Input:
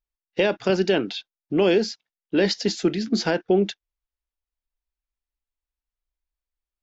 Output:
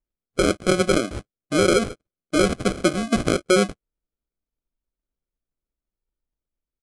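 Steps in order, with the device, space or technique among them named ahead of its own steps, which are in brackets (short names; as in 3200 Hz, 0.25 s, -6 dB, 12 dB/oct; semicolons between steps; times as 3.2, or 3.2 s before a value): crushed at another speed (playback speed 2×; sample-and-hold 24×; playback speed 0.5×); gain +1.5 dB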